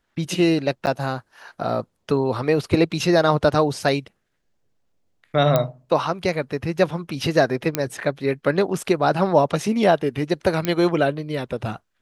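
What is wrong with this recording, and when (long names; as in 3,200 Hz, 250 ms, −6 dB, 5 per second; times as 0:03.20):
0:00.86–0:00.87: drop-out 9.5 ms
0:05.56: click −5 dBFS
0:07.75: click −4 dBFS
0:10.65: click −7 dBFS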